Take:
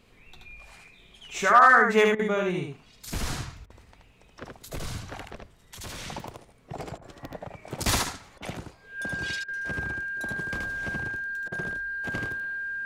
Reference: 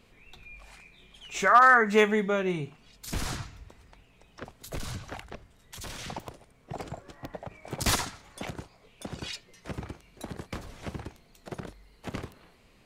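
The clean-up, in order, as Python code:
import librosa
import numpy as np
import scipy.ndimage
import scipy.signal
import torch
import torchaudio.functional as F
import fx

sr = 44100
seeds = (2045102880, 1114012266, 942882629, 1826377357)

y = fx.notch(x, sr, hz=1600.0, q=30.0)
y = fx.fix_interpolate(y, sr, at_s=(2.15, 3.66, 6.98, 8.38, 9.44, 11.48), length_ms=41.0)
y = fx.fix_echo_inverse(y, sr, delay_ms=77, level_db=-3.5)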